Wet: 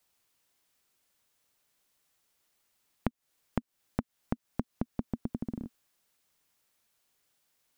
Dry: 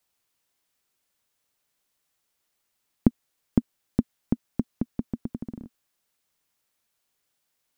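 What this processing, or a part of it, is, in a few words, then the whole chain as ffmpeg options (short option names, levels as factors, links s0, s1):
serial compression, leveller first: -af "acompressor=threshold=0.0794:ratio=2,acompressor=threshold=0.0282:ratio=4,volume=1.26"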